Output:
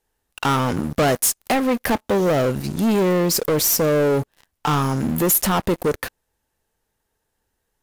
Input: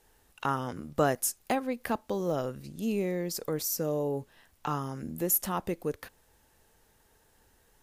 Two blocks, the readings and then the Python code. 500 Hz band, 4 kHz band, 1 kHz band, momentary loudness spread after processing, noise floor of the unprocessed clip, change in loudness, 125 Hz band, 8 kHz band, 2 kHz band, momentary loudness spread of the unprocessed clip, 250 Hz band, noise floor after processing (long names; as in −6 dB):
+11.5 dB, +15.5 dB, +10.5 dB, 7 LU, −66 dBFS, +12.0 dB, +13.5 dB, +12.0 dB, +13.0 dB, 10 LU, +12.5 dB, −76 dBFS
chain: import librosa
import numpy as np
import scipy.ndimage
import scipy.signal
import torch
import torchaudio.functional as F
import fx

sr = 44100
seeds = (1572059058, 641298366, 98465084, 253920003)

y = fx.leveller(x, sr, passes=5)